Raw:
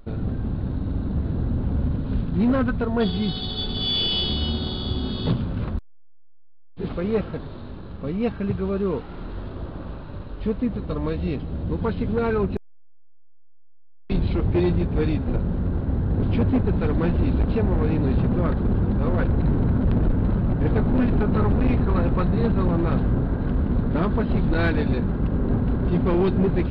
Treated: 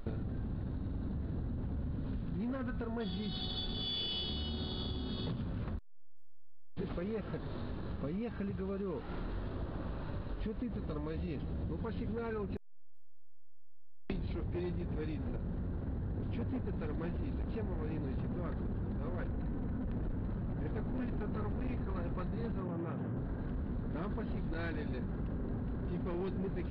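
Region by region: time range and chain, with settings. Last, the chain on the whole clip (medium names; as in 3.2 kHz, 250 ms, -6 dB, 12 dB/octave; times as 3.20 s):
2.57–3.73 s: compression 2.5:1, threshold -24 dBFS + de-hum 107.5 Hz, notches 30
19.31–19.94 s: low-pass 4.3 kHz + comb 4 ms, depth 34%
22.60–23.17 s: elliptic band-pass 110–3300 Hz + distance through air 220 m
whole clip: peaking EQ 1.8 kHz +4 dB 0.21 oct; peak limiter -19.5 dBFS; compression, threshold -37 dBFS; trim +1 dB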